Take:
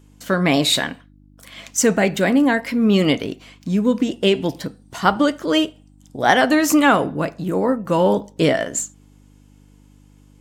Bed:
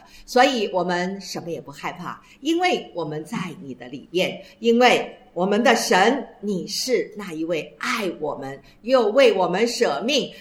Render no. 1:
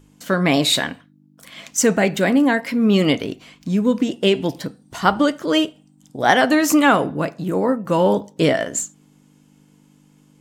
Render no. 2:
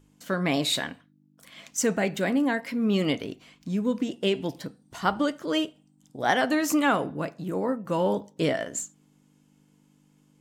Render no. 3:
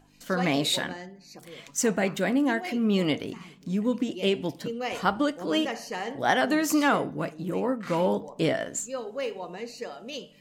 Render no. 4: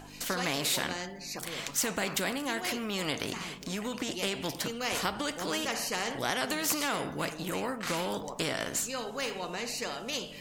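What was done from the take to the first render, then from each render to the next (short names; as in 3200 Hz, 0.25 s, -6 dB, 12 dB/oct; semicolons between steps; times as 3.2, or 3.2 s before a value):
de-hum 50 Hz, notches 2
gain -8.5 dB
add bed -17 dB
compressor, threshold -25 dBFS, peak gain reduction 7.5 dB; spectral compressor 2:1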